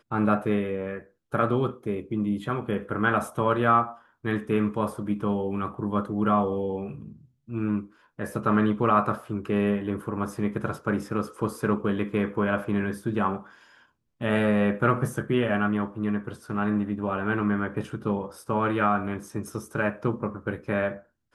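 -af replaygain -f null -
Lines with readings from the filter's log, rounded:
track_gain = +7.5 dB
track_peak = 0.269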